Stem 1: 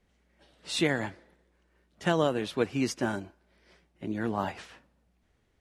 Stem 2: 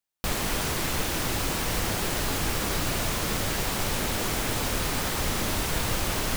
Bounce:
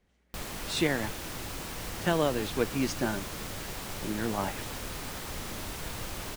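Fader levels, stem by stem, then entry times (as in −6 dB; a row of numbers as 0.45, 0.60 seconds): −1.0, −10.5 decibels; 0.00, 0.10 seconds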